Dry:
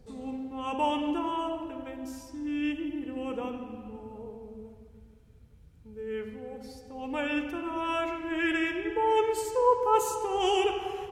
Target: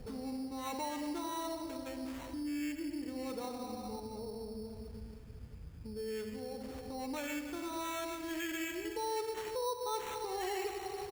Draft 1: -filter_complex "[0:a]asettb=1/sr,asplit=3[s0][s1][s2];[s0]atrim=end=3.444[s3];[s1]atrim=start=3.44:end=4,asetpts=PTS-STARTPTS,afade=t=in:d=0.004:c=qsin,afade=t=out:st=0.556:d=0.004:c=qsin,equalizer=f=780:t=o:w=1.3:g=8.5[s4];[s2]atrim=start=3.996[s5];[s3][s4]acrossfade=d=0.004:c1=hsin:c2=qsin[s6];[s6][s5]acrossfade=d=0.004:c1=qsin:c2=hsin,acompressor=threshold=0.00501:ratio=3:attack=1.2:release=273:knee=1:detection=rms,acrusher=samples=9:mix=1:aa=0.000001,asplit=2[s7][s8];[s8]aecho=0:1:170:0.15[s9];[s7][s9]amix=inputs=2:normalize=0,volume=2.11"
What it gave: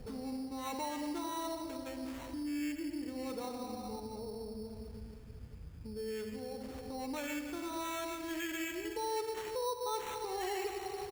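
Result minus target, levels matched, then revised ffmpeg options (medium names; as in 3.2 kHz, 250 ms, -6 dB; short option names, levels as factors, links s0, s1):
echo-to-direct +11.5 dB
-filter_complex "[0:a]asettb=1/sr,asplit=3[s0][s1][s2];[s0]atrim=end=3.444[s3];[s1]atrim=start=3.44:end=4,asetpts=PTS-STARTPTS,afade=t=in:d=0.004:c=qsin,afade=t=out:st=0.556:d=0.004:c=qsin,equalizer=f=780:t=o:w=1.3:g=8.5[s4];[s2]atrim=start=3.996[s5];[s3][s4]acrossfade=d=0.004:c1=hsin:c2=qsin[s6];[s6][s5]acrossfade=d=0.004:c1=qsin:c2=hsin,acompressor=threshold=0.00501:ratio=3:attack=1.2:release=273:knee=1:detection=rms,acrusher=samples=9:mix=1:aa=0.000001,asplit=2[s7][s8];[s8]aecho=0:1:170:0.0398[s9];[s7][s9]amix=inputs=2:normalize=0,volume=2.11"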